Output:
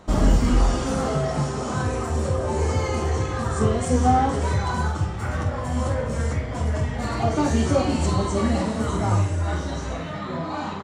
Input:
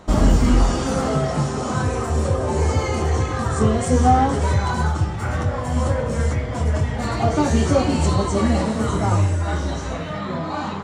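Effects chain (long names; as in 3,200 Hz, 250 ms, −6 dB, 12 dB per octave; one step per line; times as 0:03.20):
double-tracking delay 48 ms −8.5 dB
level −3.5 dB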